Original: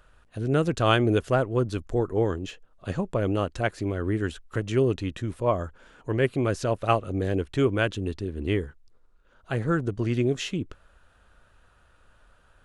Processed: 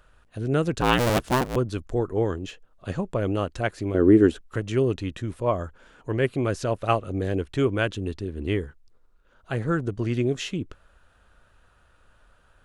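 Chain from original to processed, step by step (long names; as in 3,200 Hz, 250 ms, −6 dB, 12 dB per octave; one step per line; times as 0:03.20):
0:00.81–0:01.56: sub-harmonics by changed cycles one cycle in 2, inverted
0:03.94–0:04.41: parametric band 340 Hz +14 dB 1.9 octaves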